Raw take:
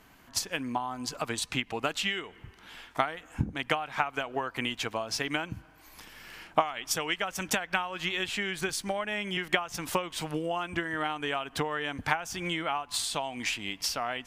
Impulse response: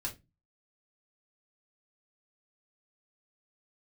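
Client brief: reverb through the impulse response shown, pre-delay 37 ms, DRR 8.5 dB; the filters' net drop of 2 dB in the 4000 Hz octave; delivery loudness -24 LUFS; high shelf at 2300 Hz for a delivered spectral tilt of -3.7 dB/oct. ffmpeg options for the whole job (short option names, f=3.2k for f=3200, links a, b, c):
-filter_complex "[0:a]highshelf=f=2.3k:g=5.5,equalizer=f=4k:t=o:g=-8.5,asplit=2[a][b];[1:a]atrim=start_sample=2205,adelay=37[c];[b][c]afir=irnorm=-1:irlink=0,volume=-9dB[d];[a][d]amix=inputs=2:normalize=0,volume=6.5dB"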